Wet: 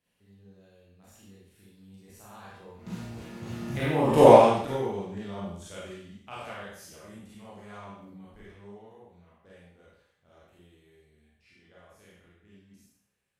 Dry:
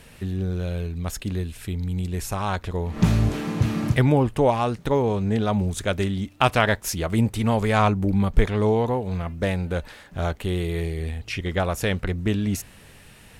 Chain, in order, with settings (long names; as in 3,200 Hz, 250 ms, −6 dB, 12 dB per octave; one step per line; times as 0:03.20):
peak hold with a decay on every bin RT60 0.54 s
source passing by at 0:04.24, 18 m/s, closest 1.5 metres
high-pass filter 120 Hz 6 dB per octave
four-comb reverb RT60 0.56 s, combs from 31 ms, DRR −7 dB
level −1 dB